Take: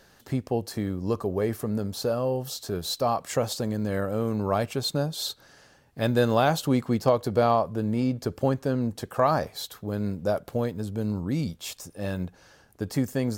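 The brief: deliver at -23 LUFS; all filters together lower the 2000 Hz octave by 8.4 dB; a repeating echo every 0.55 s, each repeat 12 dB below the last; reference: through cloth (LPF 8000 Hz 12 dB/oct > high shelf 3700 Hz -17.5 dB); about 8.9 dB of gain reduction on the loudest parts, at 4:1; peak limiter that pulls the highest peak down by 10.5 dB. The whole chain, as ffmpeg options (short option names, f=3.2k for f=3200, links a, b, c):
-af "equalizer=f=2k:t=o:g=-7.5,acompressor=threshold=-28dB:ratio=4,alimiter=level_in=1.5dB:limit=-24dB:level=0:latency=1,volume=-1.5dB,lowpass=8k,highshelf=f=3.7k:g=-17.5,aecho=1:1:550|1100|1650:0.251|0.0628|0.0157,volume=13dB"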